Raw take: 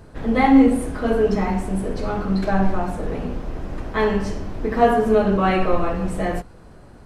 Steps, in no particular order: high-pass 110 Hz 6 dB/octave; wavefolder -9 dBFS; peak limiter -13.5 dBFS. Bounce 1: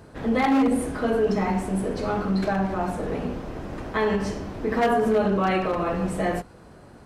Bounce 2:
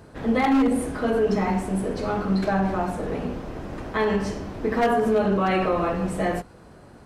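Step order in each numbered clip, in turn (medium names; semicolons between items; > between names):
wavefolder > peak limiter > high-pass; high-pass > wavefolder > peak limiter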